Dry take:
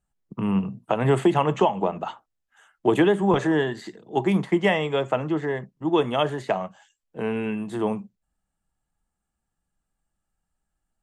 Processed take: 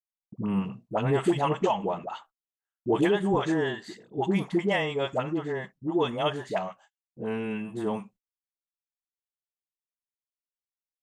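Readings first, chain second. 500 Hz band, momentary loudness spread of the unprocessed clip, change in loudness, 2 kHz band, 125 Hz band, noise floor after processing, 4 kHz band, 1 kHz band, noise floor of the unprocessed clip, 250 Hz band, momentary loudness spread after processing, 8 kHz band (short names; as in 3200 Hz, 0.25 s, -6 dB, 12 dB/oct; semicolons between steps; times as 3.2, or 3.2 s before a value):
-4.5 dB, 11 LU, -4.5 dB, -4.0 dB, -4.5 dB, under -85 dBFS, -3.0 dB, -4.5 dB, -81 dBFS, -4.5 dB, 11 LU, n/a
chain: dynamic EQ 5100 Hz, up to +4 dB, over -46 dBFS, Q 1.2; dispersion highs, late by 72 ms, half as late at 550 Hz; gate -48 dBFS, range -36 dB; gain -4.5 dB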